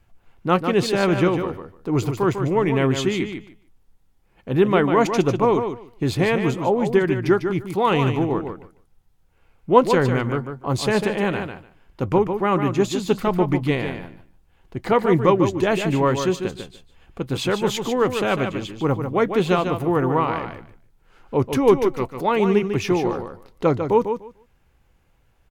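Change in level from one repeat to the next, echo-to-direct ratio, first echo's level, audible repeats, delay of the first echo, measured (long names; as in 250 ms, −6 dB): −16.0 dB, −7.5 dB, −7.5 dB, 2, 148 ms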